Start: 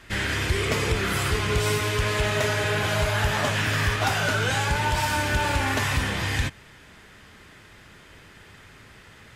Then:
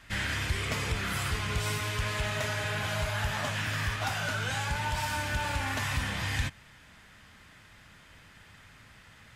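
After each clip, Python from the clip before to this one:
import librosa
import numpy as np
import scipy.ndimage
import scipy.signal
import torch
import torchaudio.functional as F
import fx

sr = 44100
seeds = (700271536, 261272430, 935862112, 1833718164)

y = fx.peak_eq(x, sr, hz=390.0, db=-9.5, octaves=0.68)
y = fx.rider(y, sr, range_db=10, speed_s=0.5)
y = y * librosa.db_to_amplitude(-6.5)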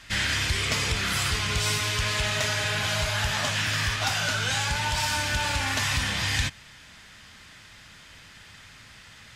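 y = fx.peak_eq(x, sr, hz=5100.0, db=9.0, octaves=2.0)
y = y * librosa.db_to_amplitude(2.5)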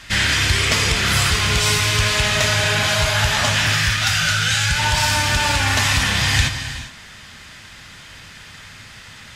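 y = fx.spec_box(x, sr, start_s=3.73, length_s=1.05, low_hz=210.0, high_hz=1200.0, gain_db=-10)
y = fx.rev_gated(y, sr, seeds[0], gate_ms=440, shape='flat', drr_db=7.5)
y = y * librosa.db_to_amplitude(8.0)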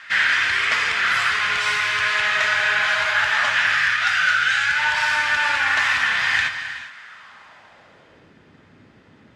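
y = fx.filter_sweep_bandpass(x, sr, from_hz=1600.0, to_hz=320.0, start_s=6.99, end_s=8.38, q=1.9)
y = y * librosa.db_to_amplitude(4.5)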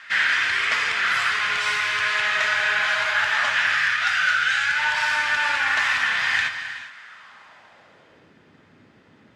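y = fx.highpass(x, sr, hz=110.0, slope=6)
y = y * librosa.db_to_amplitude(-2.0)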